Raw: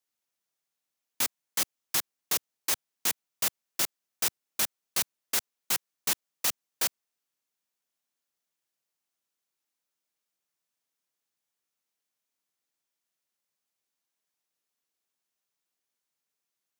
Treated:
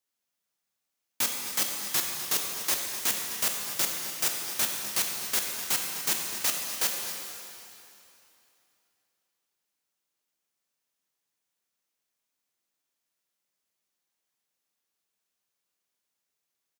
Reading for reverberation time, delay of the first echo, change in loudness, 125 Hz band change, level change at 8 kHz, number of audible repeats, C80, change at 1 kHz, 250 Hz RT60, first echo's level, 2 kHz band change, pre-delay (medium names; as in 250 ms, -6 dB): 2.9 s, 252 ms, +2.5 dB, +3.0 dB, +2.5 dB, 1, 3.0 dB, +2.5 dB, 2.9 s, -12.5 dB, +2.5 dB, 12 ms